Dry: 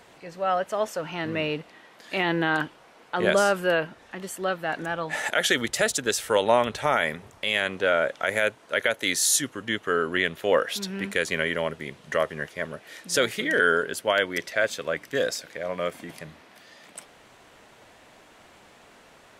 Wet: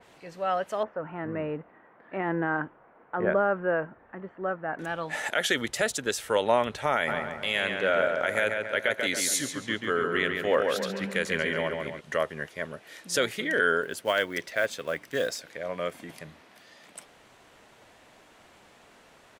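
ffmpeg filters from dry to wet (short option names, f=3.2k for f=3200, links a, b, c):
-filter_complex "[0:a]asettb=1/sr,asplit=3[a][b][c];[a]atrim=end=0.834[d];[b]atrim=start=0.83:end=4.79,asetpts=PTS-STARTPTS,afade=t=in:d=0.004:c=qsin,afade=t=out:st=3.956:d=0.004:c=qsin,lowpass=f=1.7k:w=0.5412,lowpass=f=1.7k:w=1.3066[e];[c]atrim=start=4.786[f];[d][e]acrossfade=d=0.004:c1=hsin:c2=qsin[g];[g][f]acrossfade=d=0.004:c1=qsin:c2=hsin,asplit=3[h][i][j];[h]afade=t=out:st=7.07:d=0.02[k];[i]asplit=2[l][m];[m]adelay=139,lowpass=f=3.6k:p=1,volume=-4dB,asplit=2[n][o];[o]adelay=139,lowpass=f=3.6k:p=1,volume=0.52,asplit=2[p][q];[q]adelay=139,lowpass=f=3.6k:p=1,volume=0.52,asplit=2[r][s];[s]adelay=139,lowpass=f=3.6k:p=1,volume=0.52,asplit=2[t][u];[u]adelay=139,lowpass=f=3.6k:p=1,volume=0.52,asplit=2[v][w];[w]adelay=139,lowpass=f=3.6k:p=1,volume=0.52,asplit=2[x][y];[y]adelay=139,lowpass=f=3.6k:p=1,volume=0.52[z];[l][n][p][r][t][v][x][z]amix=inputs=8:normalize=0,afade=t=in:st=7.07:d=0.02,afade=t=out:st=11.99:d=0.02[aa];[j]afade=t=in:st=11.99:d=0.02[ab];[k][aa][ab]amix=inputs=3:normalize=0,asettb=1/sr,asplit=3[ac][ad][ae];[ac]atrim=end=13.834[af];[ad]atrim=start=13.83:end=15.42,asetpts=PTS-STARTPTS,afade=t=in:d=0.004:c=qsin,afade=t=out:st=1.586:d=0.004:c=qsin,acrusher=bits=6:mode=log:mix=0:aa=0.000001[ag];[ae]atrim=start=15.416[ah];[af][ag]acrossfade=d=0.004:c1=hsin:c2=qsin[ai];[ai][ah]acrossfade=d=0.004:c1=qsin:c2=hsin,adynamicequalizer=threshold=0.0141:dfrequency=3400:dqfactor=0.7:tfrequency=3400:tqfactor=0.7:attack=5:release=100:ratio=0.375:range=1.5:mode=cutabove:tftype=highshelf,volume=-3dB"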